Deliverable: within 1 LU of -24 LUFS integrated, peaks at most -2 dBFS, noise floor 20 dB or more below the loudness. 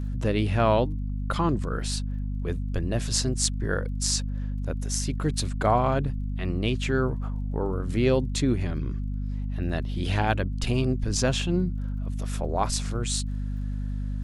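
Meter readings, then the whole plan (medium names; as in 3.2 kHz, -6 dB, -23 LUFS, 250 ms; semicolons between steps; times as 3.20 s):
tick rate 23 per s; hum 50 Hz; highest harmonic 250 Hz; hum level -27 dBFS; loudness -27.5 LUFS; peak level -6.5 dBFS; loudness target -24.0 LUFS
-> de-click; hum notches 50/100/150/200/250 Hz; trim +3.5 dB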